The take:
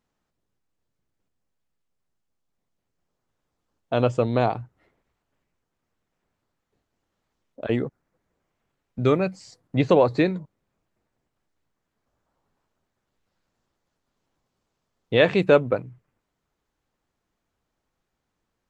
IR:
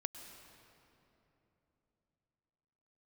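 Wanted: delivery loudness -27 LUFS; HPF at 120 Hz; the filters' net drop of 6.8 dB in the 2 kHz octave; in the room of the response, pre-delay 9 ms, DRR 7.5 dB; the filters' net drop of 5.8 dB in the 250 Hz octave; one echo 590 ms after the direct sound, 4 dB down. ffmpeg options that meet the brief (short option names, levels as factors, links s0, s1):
-filter_complex "[0:a]highpass=120,equalizer=f=250:t=o:g=-7.5,equalizer=f=2000:t=o:g=-9,aecho=1:1:590:0.631,asplit=2[s0][s1];[1:a]atrim=start_sample=2205,adelay=9[s2];[s1][s2]afir=irnorm=-1:irlink=0,volume=0.501[s3];[s0][s3]amix=inputs=2:normalize=0,volume=0.794"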